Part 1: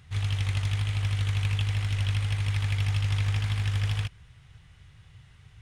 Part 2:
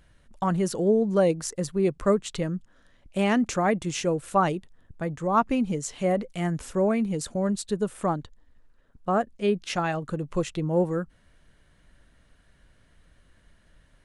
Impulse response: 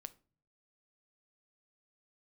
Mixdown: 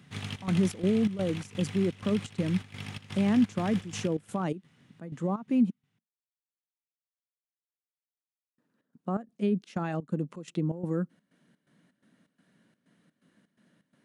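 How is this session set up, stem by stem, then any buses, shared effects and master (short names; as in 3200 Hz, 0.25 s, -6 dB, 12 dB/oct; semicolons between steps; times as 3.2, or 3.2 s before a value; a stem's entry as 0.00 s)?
-2.5 dB, 0.00 s, send -8 dB, echo send -18 dB, auto duck -7 dB, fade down 1.20 s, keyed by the second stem
-6.5 dB, 0.00 s, muted 5.7–8.58, send -24 dB, no echo send, limiter -21 dBFS, peak gain reduction 11.5 dB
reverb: on, pre-delay 7 ms
echo: echo 0.366 s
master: HPF 150 Hz 24 dB/oct; bell 220 Hz +12.5 dB 1.3 oct; step gate "xxx.xx.xx.xx." 126 bpm -12 dB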